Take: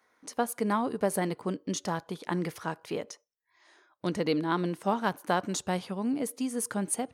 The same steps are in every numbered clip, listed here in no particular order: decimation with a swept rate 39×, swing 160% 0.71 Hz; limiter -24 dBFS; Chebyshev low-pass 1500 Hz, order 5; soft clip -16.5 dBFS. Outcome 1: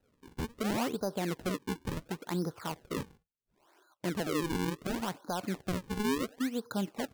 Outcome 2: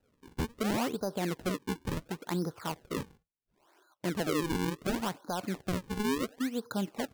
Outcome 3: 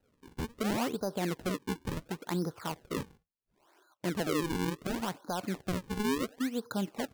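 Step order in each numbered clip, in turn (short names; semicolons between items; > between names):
soft clip > limiter > Chebyshev low-pass > decimation with a swept rate; soft clip > Chebyshev low-pass > decimation with a swept rate > limiter; soft clip > Chebyshev low-pass > limiter > decimation with a swept rate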